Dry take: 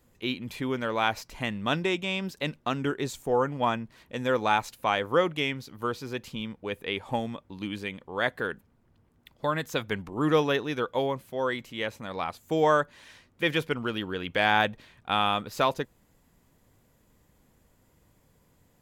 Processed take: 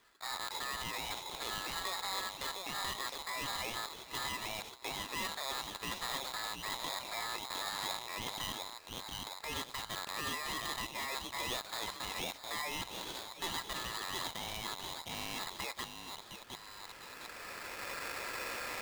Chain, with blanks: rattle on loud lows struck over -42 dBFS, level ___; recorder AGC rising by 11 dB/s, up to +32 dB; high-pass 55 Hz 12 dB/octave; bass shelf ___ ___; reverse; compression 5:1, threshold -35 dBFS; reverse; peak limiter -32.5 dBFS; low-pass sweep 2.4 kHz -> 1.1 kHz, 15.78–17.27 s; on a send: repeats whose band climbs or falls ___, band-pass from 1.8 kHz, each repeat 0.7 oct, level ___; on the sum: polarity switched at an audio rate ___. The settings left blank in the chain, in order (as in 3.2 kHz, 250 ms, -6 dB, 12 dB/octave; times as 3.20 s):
-29 dBFS, 180 Hz, -8 dB, 710 ms, -2 dB, 1.5 kHz